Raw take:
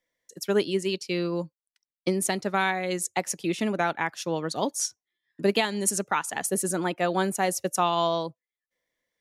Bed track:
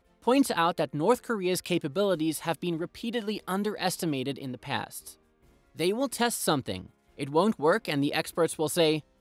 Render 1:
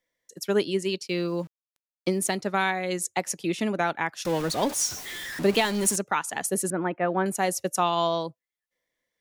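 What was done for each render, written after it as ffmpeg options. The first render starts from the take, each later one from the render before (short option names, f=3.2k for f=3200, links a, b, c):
-filter_complex "[0:a]asplit=3[a][b][c];[a]afade=t=out:st=1.07:d=0.02[d];[b]aeval=exprs='val(0)*gte(abs(val(0)),0.00398)':c=same,afade=t=in:st=1.07:d=0.02,afade=t=out:st=2.35:d=0.02[e];[c]afade=t=in:st=2.35:d=0.02[f];[d][e][f]amix=inputs=3:normalize=0,asettb=1/sr,asplit=3[g][h][i];[g]atrim=end=4.254[j];[h]atrim=start=4.25:end=5.96,asetpts=PTS-STARTPTS,afade=t=in:d=0.004:c=qsin,afade=t=out:st=1.706:d=0.004:c=qsin,aeval=exprs='val(0)+0.5*0.0335*sgn(val(0))':c=same[k];[i]atrim=start=5.956[l];[j][k]acrossfade=d=0.004:c1=hsin:c2=qsin[m];[m][l]acrossfade=d=0.004:c1=qsin:c2=hsin,asettb=1/sr,asplit=3[n][o][p];[n]atrim=end=6.704[q];[o]atrim=start=6.7:end=7.26,asetpts=PTS-STARTPTS,afade=t=in:d=0.004:c=qsin,afade=t=out:st=0.556:d=0.004:c=qsin,lowpass=f=2.2k:w=0.5412,lowpass=f=2.2k:w=1.3066[r];[p]atrim=start=7.256[s];[q][r]acrossfade=d=0.004:c1=hsin:c2=qsin[t];[t][s]acrossfade=d=0.004:c1=qsin:c2=hsin"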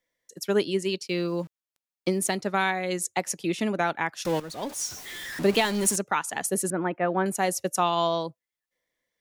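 -filter_complex "[0:a]asplit=2[a][b];[a]atrim=end=4.4,asetpts=PTS-STARTPTS,afade=t=out:st=4.396:d=0.004:c=hsin:silence=0.223872[c];[b]atrim=start=4.4,asetpts=PTS-STARTPTS,afade=t=in:d=1.01:silence=0.223872[d];[c][d]concat=n=2:v=0:a=1"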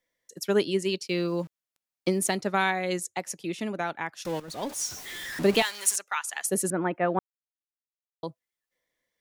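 -filter_complex "[0:a]asettb=1/sr,asplit=3[a][b][c];[a]atrim=end=5.624[d];[b]atrim=start=5.62:end=6.46,asetpts=PTS-STARTPTS,afade=t=in:d=0.004:c=qsin,afade=t=out:st=0.836:d=0.004:c=qsin,highpass=1.3k[e];[c]atrim=start=6.456[f];[d][e]acrossfade=d=0.004:c1=hsin:c2=qsin[g];[g][f]acrossfade=d=0.004:c1=qsin:c2=hsin,asplit=5[h][i][j][k][l];[h]atrim=end=3.002[m];[i]atrim=start=2.998:end=4.482,asetpts=PTS-STARTPTS,volume=-5dB[n];[j]atrim=start=4.478:end=7.19,asetpts=PTS-STARTPTS,afade=t=out:st=2.708:d=0.004:c=hsin[o];[k]atrim=start=7.19:end=8.23,asetpts=PTS-STARTPTS,volume=0[p];[l]atrim=start=8.23,asetpts=PTS-STARTPTS,afade=t=in:d=0.004:c=hsin[q];[m][n]acrossfade=d=0.004:c1=hsin:c2=hsin[r];[o][p][q]concat=n=3:v=0:a=1[s];[r][s]acrossfade=d=0.004:c1=hsin:c2=hsin"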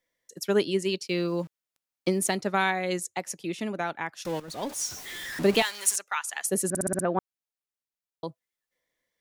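-filter_complex "[0:a]asplit=7[a][b][c][d][e][f][g];[a]atrim=end=6.752[h];[b]atrim=start=6.688:end=6.752[i];[c]atrim=start=6.688:end=6.752[j];[d]atrim=start=6.688:end=6.752[k];[e]atrim=start=6.688:end=6.752[l];[f]atrim=start=6.688:end=6.752[m];[g]atrim=start=7.048[n];[h][i]acrossfade=d=0.004:c1=hsin:c2=hsin[o];[o][j]acrossfade=d=0.004:c1=hsin:c2=hsin[p];[p][k]acrossfade=d=0.004:c1=hsin:c2=hsin[q];[q][l]acrossfade=d=0.004:c1=hsin:c2=hsin[r];[r][m]acrossfade=d=0.004:c1=hsin:c2=hsin[s];[s][n]acrossfade=d=0.004:c1=hsin:c2=hsin"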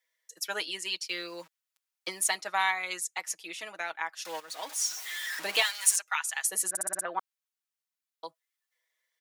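-af "highpass=1k,aecho=1:1:6.3:0.64"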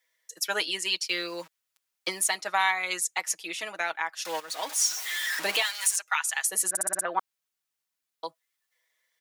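-af "acontrast=38,alimiter=limit=-13.5dB:level=0:latency=1:release=283"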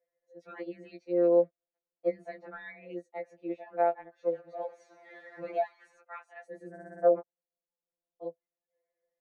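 -af "lowpass=f=580:t=q:w=3.8,afftfilt=real='re*2.83*eq(mod(b,8),0)':imag='im*2.83*eq(mod(b,8),0)':win_size=2048:overlap=0.75"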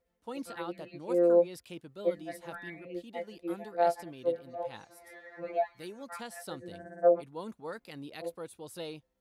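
-filter_complex "[1:a]volume=-17dB[a];[0:a][a]amix=inputs=2:normalize=0"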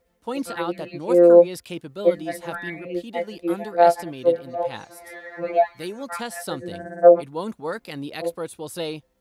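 -af "volume=11.5dB"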